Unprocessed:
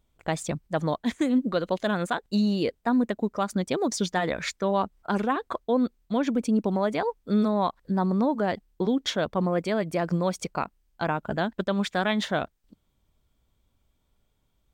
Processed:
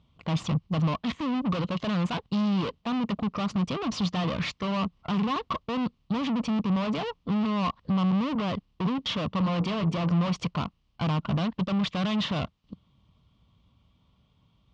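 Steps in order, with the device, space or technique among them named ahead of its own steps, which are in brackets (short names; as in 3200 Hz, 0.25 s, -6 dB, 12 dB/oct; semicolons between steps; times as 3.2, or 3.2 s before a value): 9.28–10.3 notches 60/120/180/240/300/360/420/480/540 Hz; guitar amplifier (tube stage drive 39 dB, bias 0.75; tone controls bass +11 dB, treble +6 dB; speaker cabinet 95–4500 Hz, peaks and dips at 170 Hz +3 dB, 370 Hz -5 dB, 1100 Hz +10 dB, 1600 Hz -7 dB, 2900 Hz +7 dB); gain +8 dB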